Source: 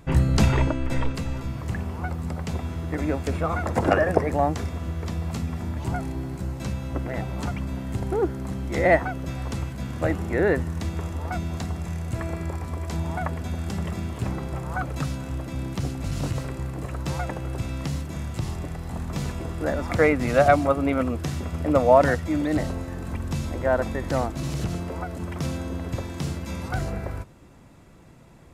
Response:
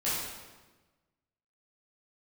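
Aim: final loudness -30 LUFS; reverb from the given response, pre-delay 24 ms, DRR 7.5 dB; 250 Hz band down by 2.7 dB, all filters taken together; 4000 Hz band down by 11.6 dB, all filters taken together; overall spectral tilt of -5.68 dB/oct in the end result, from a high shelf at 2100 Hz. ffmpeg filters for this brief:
-filter_complex "[0:a]equalizer=f=250:t=o:g=-3.5,highshelf=f=2.1k:g=-8,equalizer=f=4k:t=o:g=-7.5,asplit=2[a][b];[1:a]atrim=start_sample=2205,adelay=24[c];[b][c]afir=irnorm=-1:irlink=0,volume=-16dB[d];[a][d]amix=inputs=2:normalize=0,volume=-3dB"

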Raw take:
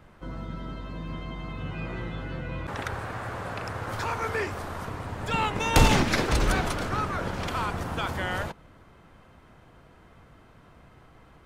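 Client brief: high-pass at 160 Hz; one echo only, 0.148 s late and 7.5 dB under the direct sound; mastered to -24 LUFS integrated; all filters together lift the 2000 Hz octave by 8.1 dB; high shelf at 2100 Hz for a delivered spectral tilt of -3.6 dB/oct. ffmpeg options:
-af "highpass=160,equalizer=f=2k:t=o:g=5.5,highshelf=f=2.1k:g=8.5,aecho=1:1:148:0.422,volume=-0.5dB"

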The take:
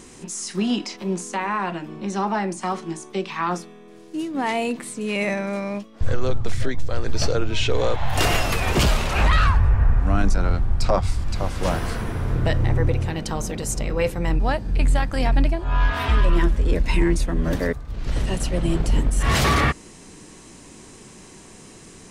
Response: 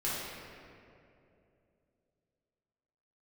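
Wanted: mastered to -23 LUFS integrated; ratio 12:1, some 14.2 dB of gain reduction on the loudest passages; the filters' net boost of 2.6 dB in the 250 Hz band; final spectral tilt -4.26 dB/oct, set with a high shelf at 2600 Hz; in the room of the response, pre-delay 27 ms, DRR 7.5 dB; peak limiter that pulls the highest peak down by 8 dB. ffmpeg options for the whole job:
-filter_complex "[0:a]equalizer=f=250:t=o:g=3.5,highshelf=f=2.6k:g=8.5,acompressor=threshold=-27dB:ratio=12,alimiter=limit=-23.5dB:level=0:latency=1,asplit=2[a][b];[1:a]atrim=start_sample=2205,adelay=27[c];[b][c]afir=irnorm=-1:irlink=0,volume=-14dB[d];[a][d]amix=inputs=2:normalize=0,volume=10dB"

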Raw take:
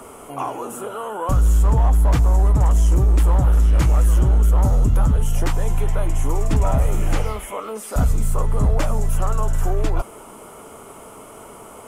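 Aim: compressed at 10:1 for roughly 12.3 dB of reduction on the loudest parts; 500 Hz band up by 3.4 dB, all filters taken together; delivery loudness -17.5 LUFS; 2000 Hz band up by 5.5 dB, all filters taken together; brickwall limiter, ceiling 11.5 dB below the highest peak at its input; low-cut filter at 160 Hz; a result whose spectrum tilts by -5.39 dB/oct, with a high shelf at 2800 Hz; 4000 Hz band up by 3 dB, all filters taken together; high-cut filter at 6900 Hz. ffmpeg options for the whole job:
-af "highpass=160,lowpass=6.9k,equalizer=f=500:t=o:g=4,equalizer=f=2k:t=o:g=7.5,highshelf=f=2.8k:g=-4.5,equalizer=f=4k:t=o:g=5,acompressor=threshold=-31dB:ratio=10,volume=22dB,alimiter=limit=-9dB:level=0:latency=1"

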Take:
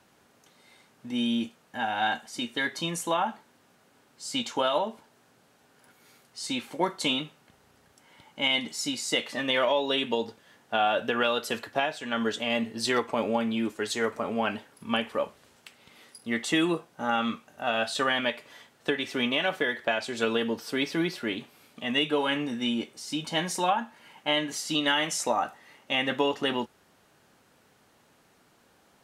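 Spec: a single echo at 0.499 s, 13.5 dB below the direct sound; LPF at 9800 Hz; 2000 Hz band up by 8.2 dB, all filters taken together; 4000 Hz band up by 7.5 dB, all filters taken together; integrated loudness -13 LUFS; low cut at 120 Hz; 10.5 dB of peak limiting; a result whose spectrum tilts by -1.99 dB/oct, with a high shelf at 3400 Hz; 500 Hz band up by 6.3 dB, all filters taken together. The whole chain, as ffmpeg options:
-af "highpass=120,lowpass=9.8k,equalizer=f=500:t=o:g=7,equalizer=f=2k:t=o:g=7.5,highshelf=f=3.4k:g=5.5,equalizer=f=4k:t=o:g=3,alimiter=limit=-15dB:level=0:latency=1,aecho=1:1:499:0.211,volume=13dB"

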